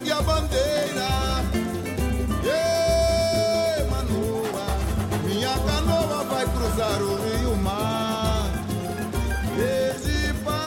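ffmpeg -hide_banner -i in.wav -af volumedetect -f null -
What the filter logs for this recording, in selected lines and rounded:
mean_volume: -23.4 dB
max_volume: -9.8 dB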